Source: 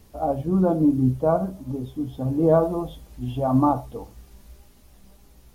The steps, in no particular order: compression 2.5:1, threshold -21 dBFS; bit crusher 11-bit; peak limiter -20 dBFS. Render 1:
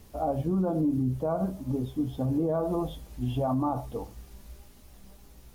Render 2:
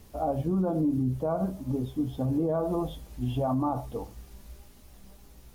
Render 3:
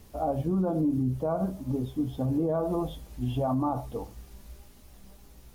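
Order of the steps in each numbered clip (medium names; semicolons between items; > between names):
compression > peak limiter > bit crusher; compression > bit crusher > peak limiter; bit crusher > compression > peak limiter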